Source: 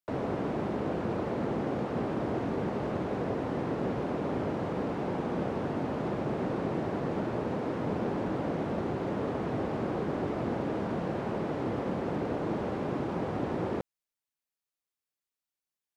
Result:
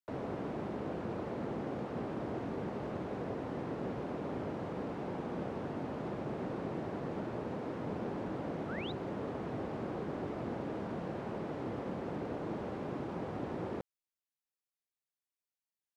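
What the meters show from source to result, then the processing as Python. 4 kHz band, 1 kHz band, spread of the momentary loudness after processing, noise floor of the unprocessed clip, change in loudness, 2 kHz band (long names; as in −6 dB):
−4.5 dB, −7.0 dB, 1 LU, below −85 dBFS, −7.0 dB, −6.5 dB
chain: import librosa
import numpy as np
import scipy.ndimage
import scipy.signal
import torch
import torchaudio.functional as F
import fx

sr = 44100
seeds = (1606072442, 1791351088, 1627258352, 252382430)

y = fx.spec_paint(x, sr, seeds[0], shape='rise', start_s=8.68, length_s=0.24, low_hz=1200.0, high_hz=4100.0, level_db=-39.0)
y = F.gain(torch.from_numpy(y), -7.0).numpy()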